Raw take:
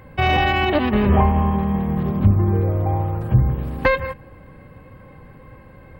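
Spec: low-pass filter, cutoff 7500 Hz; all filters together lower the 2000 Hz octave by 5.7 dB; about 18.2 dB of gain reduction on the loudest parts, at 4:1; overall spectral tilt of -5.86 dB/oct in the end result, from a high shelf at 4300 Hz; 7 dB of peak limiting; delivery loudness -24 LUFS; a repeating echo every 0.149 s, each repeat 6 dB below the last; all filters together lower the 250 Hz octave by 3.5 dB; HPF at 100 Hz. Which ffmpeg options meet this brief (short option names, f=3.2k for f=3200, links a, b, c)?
-af "highpass=100,lowpass=7.5k,equalizer=f=250:t=o:g=-4.5,equalizer=f=2k:t=o:g=-6.5,highshelf=f=4.3k:g=-3,acompressor=threshold=-36dB:ratio=4,alimiter=level_in=5dB:limit=-24dB:level=0:latency=1,volume=-5dB,aecho=1:1:149|298|447|596|745|894:0.501|0.251|0.125|0.0626|0.0313|0.0157,volume=15dB"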